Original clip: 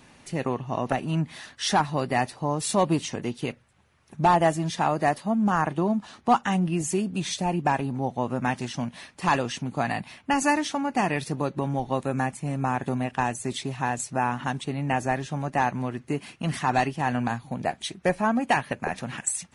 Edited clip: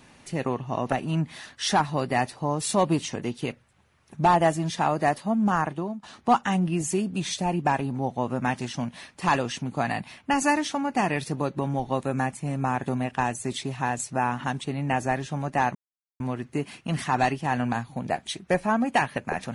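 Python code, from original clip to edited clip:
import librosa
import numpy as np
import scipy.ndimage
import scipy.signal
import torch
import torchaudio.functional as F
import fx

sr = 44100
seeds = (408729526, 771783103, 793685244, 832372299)

y = fx.edit(x, sr, fx.fade_out_to(start_s=5.54, length_s=0.49, floor_db=-15.5),
    fx.insert_silence(at_s=15.75, length_s=0.45), tone=tone)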